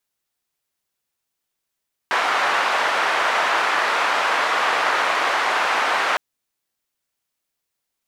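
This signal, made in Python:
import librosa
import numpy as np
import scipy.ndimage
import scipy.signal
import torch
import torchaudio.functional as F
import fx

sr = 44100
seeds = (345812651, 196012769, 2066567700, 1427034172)

y = fx.band_noise(sr, seeds[0], length_s=4.06, low_hz=850.0, high_hz=1300.0, level_db=-20.0)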